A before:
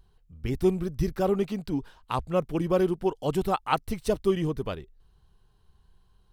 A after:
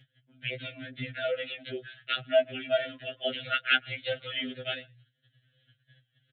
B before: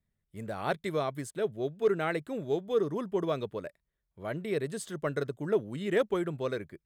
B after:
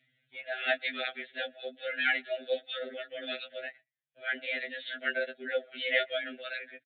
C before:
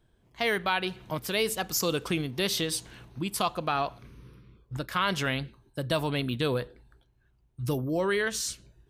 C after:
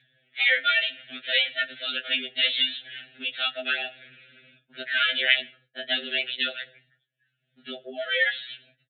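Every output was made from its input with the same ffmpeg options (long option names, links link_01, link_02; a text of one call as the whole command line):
ffmpeg -i in.wav -filter_complex "[0:a]agate=range=-23dB:threshold=-55dB:ratio=16:detection=peak,asuperstop=centerf=890:order=8:qfactor=1.1,asplit=2[link_01][link_02];[link_02]adelay=120,highpass=300,lowpass=3400,asoftclip=type=hard:threshold=-22dB,volume=-30dB[link_03];[link_01][link_03]amix=inputs=2:normalize=0,asplit=2[link_04][link_05];[link_05]acompressor=threshold=-40dB:ratio=6,volume=2.5dB[link_06];[link_04][link_06]amix=inputs=2:normalize=0,flanger=delay=5.8:depth=2.7:regen=-26:speed=1.3:shape=sinusoidal,tiltshelf=frequency=970:gain=-6.5,bandreject=frequency=60:width_type=h:width=6,bandreject=frequency=120:width_type=h:width=6,bandreject=frequency=180:width_type=h:width=6,acompressor=mode=upward:threshold=-50dB:ratio=2.5,afreqshift=99,aresample=8000,aresample=44100,lowshelf=frequency=540:width_type=q:width=1.5:gain=-12,afftfilt=real='re*2.45*eq(mod(b,6),0)':imag='im*2.45*eq(mod(b,6),0)':win_size=2048:overlap=0.75,volume=8.5dB" out.wav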